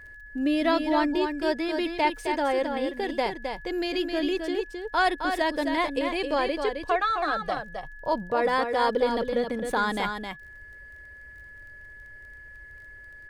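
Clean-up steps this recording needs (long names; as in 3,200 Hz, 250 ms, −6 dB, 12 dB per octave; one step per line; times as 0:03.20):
click removal
notch filter 1,700 Hz, Q 30
echo removal 264 ms −6 dB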